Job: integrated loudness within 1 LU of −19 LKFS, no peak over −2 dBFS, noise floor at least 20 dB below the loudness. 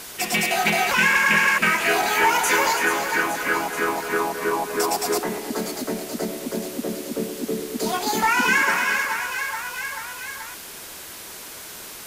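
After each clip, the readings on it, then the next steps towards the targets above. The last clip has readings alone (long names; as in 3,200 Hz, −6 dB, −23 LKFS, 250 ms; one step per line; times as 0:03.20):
background noise floor −38 dBFS; target noise floor −42 dBFS; integrated loudness −21.5 LKFS; sample peak −7.0 dBFS; target loudness −19.0 LKFS
→ broadband denoise 6 dB, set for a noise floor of −38 dBFS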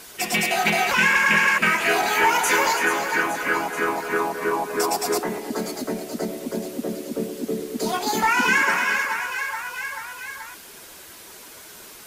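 background noise floor −43 dBFS; integrated loudness −21.5 LKFS; sample peak −7.0 dBFS; target loudness −19.0 LKFS
→ level +2.5 dB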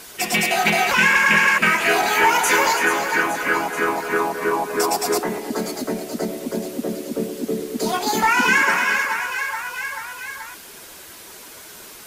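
integrated loudness −19.0 LKFS; sample peak −4.5 dBFS; background noise floor −41 dBFS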